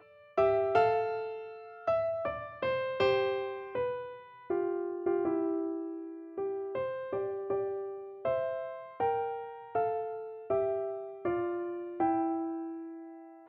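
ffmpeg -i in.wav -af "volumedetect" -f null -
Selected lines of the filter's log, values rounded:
mean_volume: -33.1 dB
max_volume: -13.0 dB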